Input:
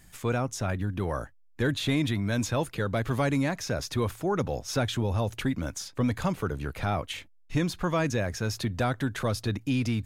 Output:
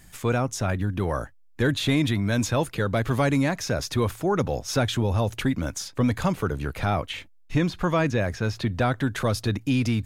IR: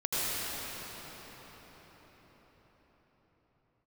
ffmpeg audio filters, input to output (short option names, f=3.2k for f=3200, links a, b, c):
-filter_complex "[0:a]asettb=1/sr,asplit=3[a][b][c];[a]atrim=end=6.944[d];[b]atrim=start=6.94:end=9.13,asetpts=PTS-STARTPTS,afade=t=in:d=0.004:c=qsin,afade=t=out:st=2.186:d=0.004:c=qsin,acrossover=split=4400[e][f];[f]acompressor=threshold=-52dB:ratio=4:attack=1:release=60[g];[e][g]amix=inputs=2:normalize=0[h];[c]atrim=start=9.126[i];[d][h]acrossfade=d=0.004:c1=hsin:c2=qsin[j];[j][i]acrossfade=d=0.004:c1=qsin:c2=hsin,volume=4dB"